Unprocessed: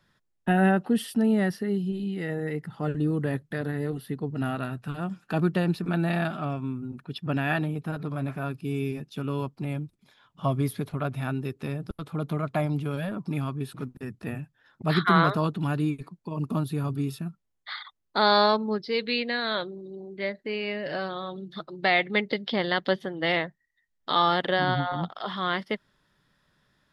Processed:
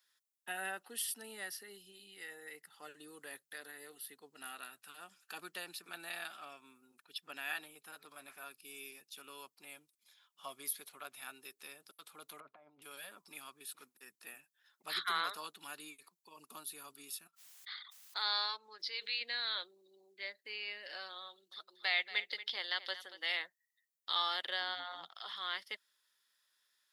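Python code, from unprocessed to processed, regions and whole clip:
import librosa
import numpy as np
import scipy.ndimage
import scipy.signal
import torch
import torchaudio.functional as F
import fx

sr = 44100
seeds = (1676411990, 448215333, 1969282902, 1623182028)

y = fx.chain(x, sr, fx.lowpass(hz=1000.0, slope=12),
    fx.over_compress(threshold_db=-31.0, ratio=-0.5), at=(12.4, 12.82))
y = fx.chain(y, sr, fx.highpass(hz=980.0, slope=6),
    fx.high_shelf(hz=5000.0, db=-9.5),
    fx.pre_swell(db_per_s=68.0), at=(17.27, 19.21))
y = fx.chain(y, sr, fx.highpass(hz=370.0, slope=6),
    fx.echo_single(ms=232, db=-14.0), at=(21.28, 23.4))
y = scipy.signal.sosfilt(scipy.signal.butter(2, 330.0, 'highpass', fs=sr, output='sos'), y)
y = np.diff(y, prepend=0.0)
y = fx.notch(y, sr, hz=640.0, q=12.0)
y = F.gain(torch.from_numpy(y), 1.5).numpy()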